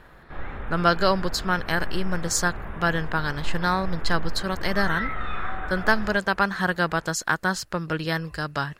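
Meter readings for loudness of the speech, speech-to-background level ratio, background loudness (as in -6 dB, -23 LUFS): -25.5 LUFS, 10.0 dB, -35.5 LUFS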